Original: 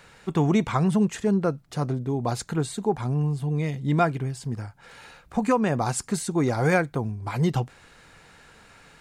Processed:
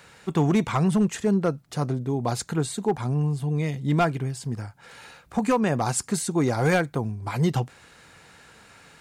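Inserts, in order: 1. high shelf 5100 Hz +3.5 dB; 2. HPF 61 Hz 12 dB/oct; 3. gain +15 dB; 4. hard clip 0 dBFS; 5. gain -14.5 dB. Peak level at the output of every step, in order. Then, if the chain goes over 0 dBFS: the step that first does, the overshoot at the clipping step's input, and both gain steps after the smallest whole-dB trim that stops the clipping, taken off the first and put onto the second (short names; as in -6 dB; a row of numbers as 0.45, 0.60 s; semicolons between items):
-9.0, -8.0, +7.0, 0.0, -14.5 dBFS; step 3, 7.0 dB; step 3 +8 dB, step 5 -7.5 dB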